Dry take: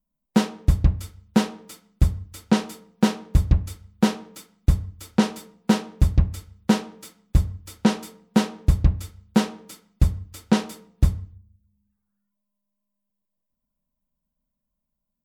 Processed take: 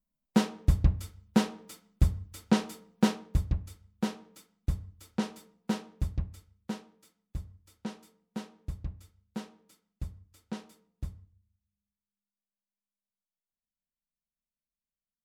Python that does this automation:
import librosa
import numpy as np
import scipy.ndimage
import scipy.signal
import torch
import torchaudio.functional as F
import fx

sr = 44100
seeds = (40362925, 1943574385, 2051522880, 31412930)

y = fx.gain(x, sr, db=fx.line((3.08, -5.5), (3.56, -12.0), (5.84, -12.0), (6.98, -19.5)))